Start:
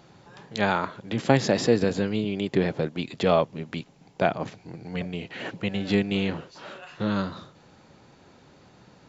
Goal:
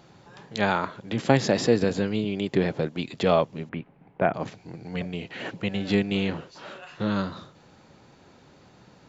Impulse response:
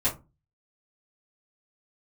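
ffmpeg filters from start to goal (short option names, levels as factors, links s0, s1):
-filter_complex "[0:a]asettb=1/sr,asplit=3[s0][s1][s2];[s0]atrim=end=3.694[s3];[s1]atrim=start=3.69:end=4.34,asetpts=PTS-STARTPTS,afade=t=in:d=0.004:c=qsin,afade=t=out:st=0.646:d=0.004:c=qsin,lowpass=f=2300:w=0.5412,lowpass=f=2300:w=1.3066[s4];[s2]atrim=start=4.336[s5];[s3][s4]acrossfade=d=0.004:c1=hsin:c2=qsin[s6];[s6][s5]acrossfade=d=0.004:c1=qsin:c2=hsin"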